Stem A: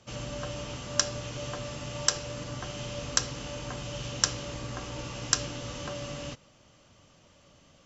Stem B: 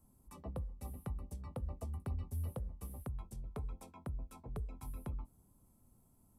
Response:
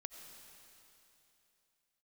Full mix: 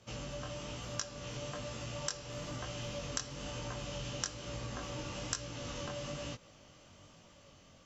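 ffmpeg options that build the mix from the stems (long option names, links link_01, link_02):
-filter_complex "[0:a]dynaudnorm=framelen=780:gausssize=5:maxgain=11.5dB,volume=0.5dB[link_01];[1:a]volume=-14.5dB[link_02];[link_01][link_02]amix=inputs=2:normalize=0,flanger=delay=17.5:depth=5.5:speed=1.1,acompressor=threshold=-40dB:ratio=2.5"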